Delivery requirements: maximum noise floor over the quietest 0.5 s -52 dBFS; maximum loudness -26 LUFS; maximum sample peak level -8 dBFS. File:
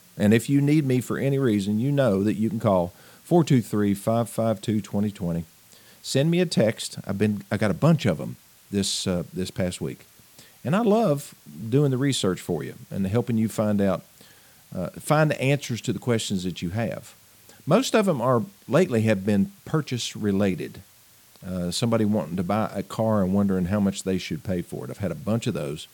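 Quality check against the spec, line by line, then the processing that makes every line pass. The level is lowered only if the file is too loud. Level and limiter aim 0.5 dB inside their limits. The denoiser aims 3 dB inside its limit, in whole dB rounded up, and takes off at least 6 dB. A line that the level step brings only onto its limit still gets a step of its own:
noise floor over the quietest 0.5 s -54 dBFS: OK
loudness -24.5 LUFS: fail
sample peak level -6.0 dBFS: fail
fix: gain -2 dB; limiter -8.5 dBFS

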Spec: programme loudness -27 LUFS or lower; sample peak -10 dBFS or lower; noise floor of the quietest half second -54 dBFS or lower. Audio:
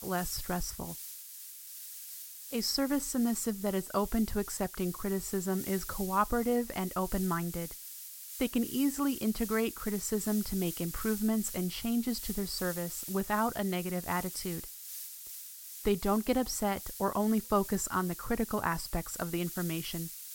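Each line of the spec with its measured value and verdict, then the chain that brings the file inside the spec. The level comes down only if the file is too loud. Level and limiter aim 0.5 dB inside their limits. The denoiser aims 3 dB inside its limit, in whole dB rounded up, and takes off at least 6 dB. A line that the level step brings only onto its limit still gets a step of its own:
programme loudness -33.0 LUFS: OK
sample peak -14.5 dBFS: OK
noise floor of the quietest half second -47 dBFS: fail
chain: denoiser 10 dB, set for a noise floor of -47 dBFS

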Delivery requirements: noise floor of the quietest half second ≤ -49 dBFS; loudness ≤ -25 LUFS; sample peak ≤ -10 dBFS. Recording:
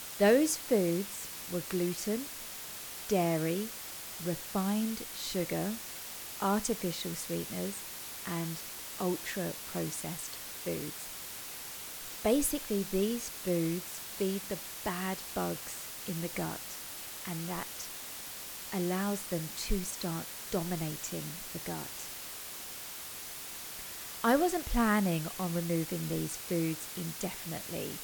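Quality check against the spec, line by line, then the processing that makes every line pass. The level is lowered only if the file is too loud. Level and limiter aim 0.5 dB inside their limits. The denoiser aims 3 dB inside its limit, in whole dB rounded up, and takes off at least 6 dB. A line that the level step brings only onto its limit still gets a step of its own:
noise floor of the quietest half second -44 dBFS: fail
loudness -34.5 LUFS: OK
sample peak -15.5 dBFS: OK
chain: denoiser 8 dB, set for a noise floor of -44 dBFS

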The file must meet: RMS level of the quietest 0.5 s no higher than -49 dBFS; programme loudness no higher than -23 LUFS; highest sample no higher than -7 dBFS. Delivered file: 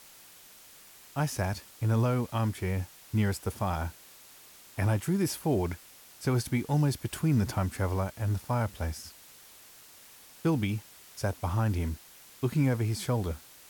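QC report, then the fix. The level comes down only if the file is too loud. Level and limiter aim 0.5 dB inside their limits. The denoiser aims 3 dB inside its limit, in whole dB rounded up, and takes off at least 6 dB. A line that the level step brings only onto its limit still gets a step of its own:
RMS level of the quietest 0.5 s -53 dBFS: OK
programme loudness -30.5 LUFS: OK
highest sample -16.0 dBFS: OK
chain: none

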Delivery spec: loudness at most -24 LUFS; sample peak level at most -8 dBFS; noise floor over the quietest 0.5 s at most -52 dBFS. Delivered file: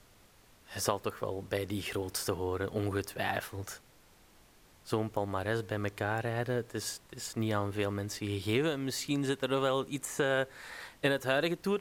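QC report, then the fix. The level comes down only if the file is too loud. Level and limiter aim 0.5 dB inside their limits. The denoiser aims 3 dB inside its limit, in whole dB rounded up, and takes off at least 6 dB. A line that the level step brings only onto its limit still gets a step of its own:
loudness -33.5 LUFS: OK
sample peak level -13.0 dBFS: OK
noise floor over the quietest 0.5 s -61 dBFS: OK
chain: none

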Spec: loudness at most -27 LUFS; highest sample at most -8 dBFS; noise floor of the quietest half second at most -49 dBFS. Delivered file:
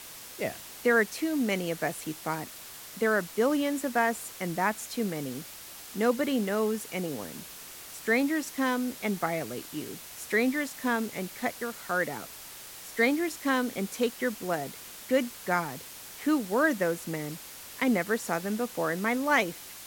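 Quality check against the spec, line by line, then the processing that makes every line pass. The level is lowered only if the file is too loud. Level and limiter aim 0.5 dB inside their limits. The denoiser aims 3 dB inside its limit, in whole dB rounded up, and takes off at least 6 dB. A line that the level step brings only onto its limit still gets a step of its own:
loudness -29.5 LUFS: OK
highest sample -11.0 dBFS: OK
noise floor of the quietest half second -45 dBFS: fail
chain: denoiser 7 dB, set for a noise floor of -45 dBFS

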